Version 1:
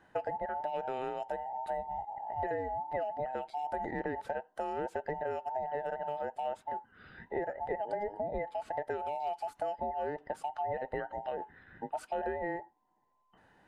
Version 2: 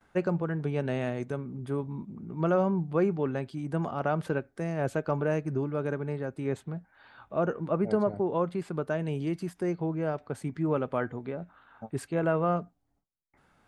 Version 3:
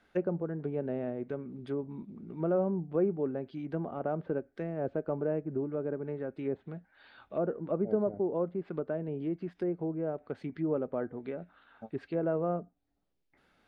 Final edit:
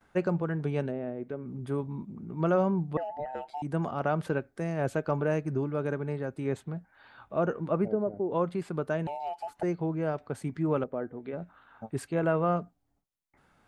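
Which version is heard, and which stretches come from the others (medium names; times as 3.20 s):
2
0.88–1.44 s: from 3, crossfade 0.10 s
2.97–3.62 s: from 1
7.88–8.31 s: from 3
9.07–9.63 s: from 1
10.84–11.33 s: from 3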